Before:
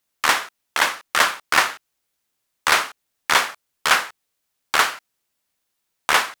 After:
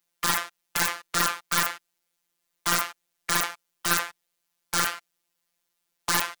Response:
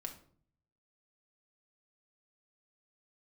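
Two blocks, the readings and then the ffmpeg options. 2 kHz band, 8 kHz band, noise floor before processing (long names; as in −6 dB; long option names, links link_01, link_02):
−9.0 dB, −1.5 dB, −76 dBFS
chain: -af "acontrast=65,afftfilt=real='hypot(re,im)*cos(PI*b)':imag='0':win_size=1024:overlap=0.75,aeval=exprs='(mod(1.26*val(0)+1,2)-1)/1.26':channel_layout=same,volume=-5.5dB"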